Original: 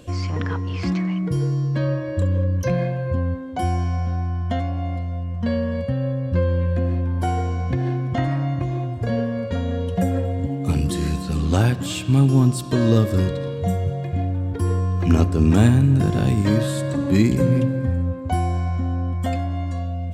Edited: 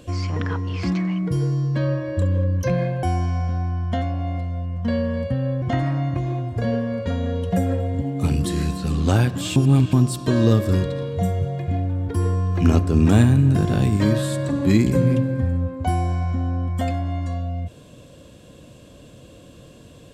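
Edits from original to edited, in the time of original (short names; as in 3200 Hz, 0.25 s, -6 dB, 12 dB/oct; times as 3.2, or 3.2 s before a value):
3.03–3.61 cut
6.2–8.07 cut
12.01–12.38 reverse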